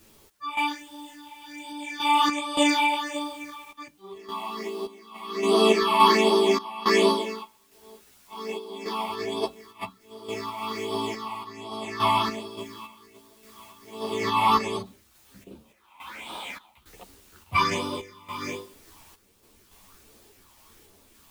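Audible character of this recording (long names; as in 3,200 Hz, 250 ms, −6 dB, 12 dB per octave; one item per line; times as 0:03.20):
phaser sweep stages 6, 1.3 Hz, lowest notch 420–2,000 Hz
a quantiser's noise floor 10 bits, dither triangular
sample-and-hold tremolo, depth 90%
a shimmering, thickened sound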